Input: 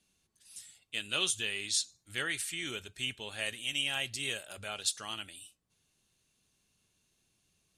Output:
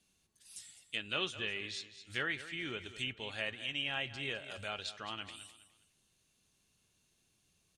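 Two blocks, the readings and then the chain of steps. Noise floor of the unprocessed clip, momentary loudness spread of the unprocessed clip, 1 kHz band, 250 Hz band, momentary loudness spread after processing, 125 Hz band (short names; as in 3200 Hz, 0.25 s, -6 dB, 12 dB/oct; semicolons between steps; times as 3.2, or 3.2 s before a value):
-77 dBFS, 15 LU, 0.0 dB, 0.0 dB, 14 LU, 0.0 dB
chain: feedback echo 0.206 s, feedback 30%, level -14 dB; treble ducked by the level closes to 2500 Hz, closed at -34 dBFS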